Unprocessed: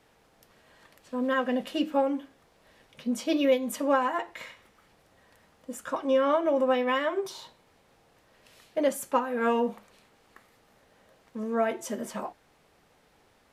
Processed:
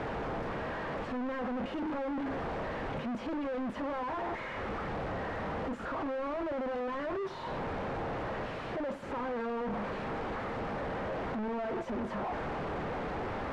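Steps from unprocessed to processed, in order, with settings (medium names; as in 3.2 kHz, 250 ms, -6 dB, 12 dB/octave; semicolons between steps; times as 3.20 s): one-bit comparator; low-pass 1.4 kHz 12 dB/octave; trim -3 dB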